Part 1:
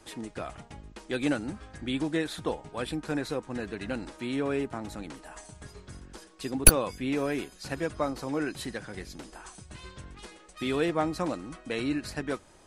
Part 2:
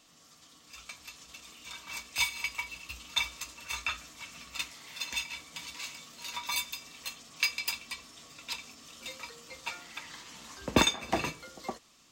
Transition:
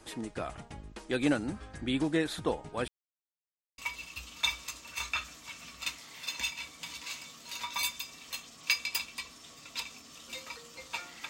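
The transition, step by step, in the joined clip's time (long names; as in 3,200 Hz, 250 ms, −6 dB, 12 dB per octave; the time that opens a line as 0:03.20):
part 1
0:02.88–0:03.78: silence
0:03.78: continue with part 2 from 0:02.51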